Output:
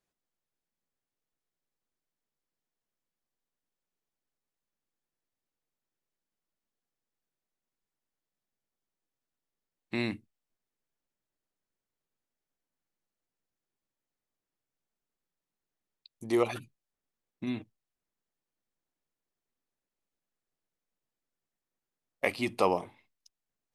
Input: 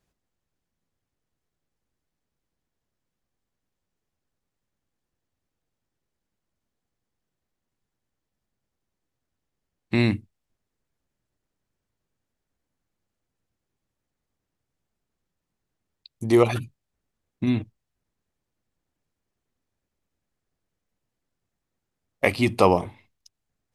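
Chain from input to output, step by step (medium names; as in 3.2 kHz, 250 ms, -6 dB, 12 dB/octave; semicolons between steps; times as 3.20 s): peaking EQ 67 Hz -14.5 dB 2.2 oct; trim -7.5 dB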